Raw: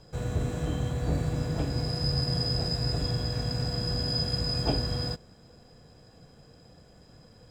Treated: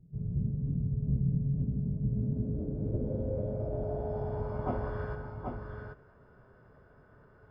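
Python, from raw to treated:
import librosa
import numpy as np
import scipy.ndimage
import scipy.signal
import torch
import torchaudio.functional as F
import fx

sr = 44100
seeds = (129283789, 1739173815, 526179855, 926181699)

y = fx.filter_sweep_lowpass(x, sr, from_hz=190.0, to_hz=1400.0, start_s=1.7, end_s=5.0, q=3.2)
y = fx.echo_multitap(y, sr, ms=(51, 130, 182, 782), db=(-13.0, -11.0, -12.0, -5.0))
y = fx.pitch_keep_formants(y, sr, semitones=-2.5)
y = F.gain(torch.from_numpy(y), -6.0).numpy()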